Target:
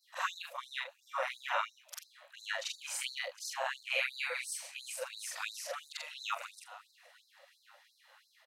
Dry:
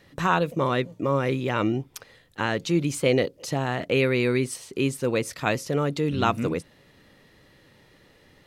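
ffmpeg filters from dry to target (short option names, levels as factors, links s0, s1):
-filter_complex "[0:a]afftfilt=real='re':imag='-im':win_size=4096:overlap=0.75,asplit=5[s0][s1][s2][s3][s4];[s1]adelay=472,afreqshift=41,volume=0.0708[s5];[s2]adelay=944,afreqshift=82,volume=0.0403[s6];[s3]adelay=1416,afreqshift=123,volume=0.0229[s7];[s4]adelay=1888,afreqshift=164,volume=0.0132[s8];[s0][s5][s6][s7][s8]amix=inputs=5:normalize=0,afftfilt=real='re*gte(b*sr/1024,490*pow(3900/490,0.5+0.5*sin(2*PI*2.9*pts/sr)))':imag='im*gte(b*sr/1024,490*pow(3900/490,0.5+0.5*sin(2*PI*2.9*pts/sr)))':win_size=1024:overlap=0.75"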